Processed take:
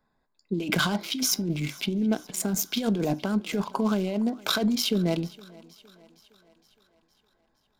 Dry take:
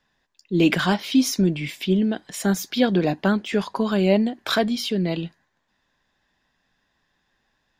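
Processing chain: Wiener smoothing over 15 samples; high shelf 5600 Hz +11.5 dB; notch 1800 Hz, Q 6; negative-ratio compressor -23 dBFS, ratio -1; thinning echo 0.463 s, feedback 57%, high-pass 210 Hz, level -22 dB; on a send at -14 dB: reverb RT60 0.25 s, pre-delay 5 ms; on the sum: gain -3 dB

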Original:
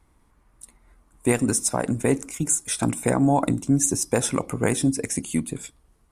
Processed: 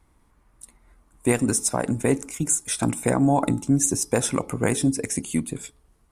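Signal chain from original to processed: de-hum 428.8 Hz, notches 3

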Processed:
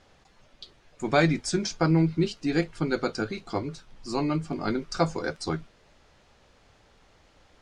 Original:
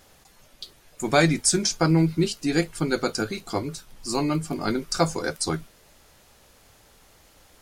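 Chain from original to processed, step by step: air absorption 120 m; gain -2 dB

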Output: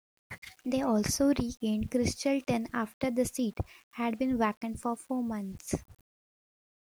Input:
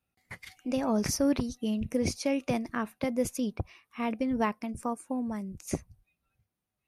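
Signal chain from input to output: requantised 10-bit, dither none

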